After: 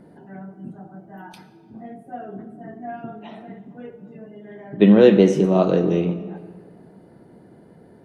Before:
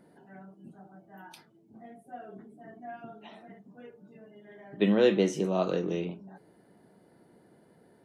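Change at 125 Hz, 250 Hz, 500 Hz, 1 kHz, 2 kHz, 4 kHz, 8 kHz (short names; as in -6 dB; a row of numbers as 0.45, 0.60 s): +13.0 dB, +12.5 dB, +10.5 dB, +9.0 dB, +6.5 dB, +5.0 dB, n/a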